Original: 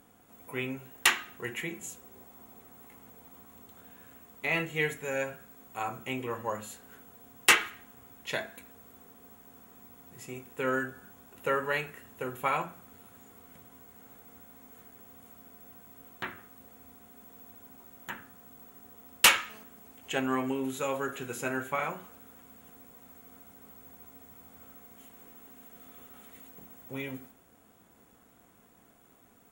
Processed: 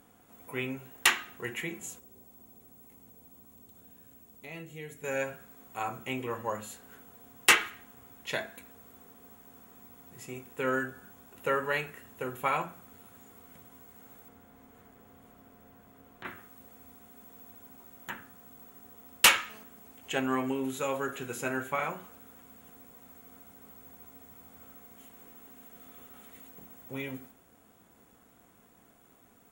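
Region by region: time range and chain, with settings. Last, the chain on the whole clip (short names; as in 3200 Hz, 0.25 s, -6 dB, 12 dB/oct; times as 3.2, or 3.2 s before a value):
1.99–5.04 bell 1500 Hz -11 dB 2.6 oct + compressor 1.5:1, threshold -53 dBFS
14.28–16.25 high shelf 3500 Hz -10.5 dB + frequency-shifting echo 0.141 s, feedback 41%, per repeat -130 Hz, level -13 dB + three-band squash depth 70%
whole clip: dry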